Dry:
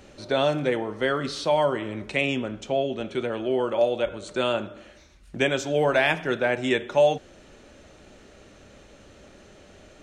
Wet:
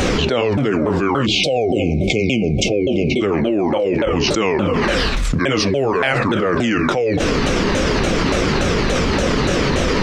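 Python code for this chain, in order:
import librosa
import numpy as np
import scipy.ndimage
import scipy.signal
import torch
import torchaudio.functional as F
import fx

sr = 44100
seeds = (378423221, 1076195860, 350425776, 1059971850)

y = fx.pitch_ramps(x, sr, semitones=-8.0, every_ms=287)
y = fx.spec_erase(y, sr, start_s=1.26, length_s=1.95, low_hz=780.0, high_hz=2100.0)
y = fx.env_flatten(y, sr, amount_pct=100)
y = y * 10.0 ** (-1.0 / 20.0)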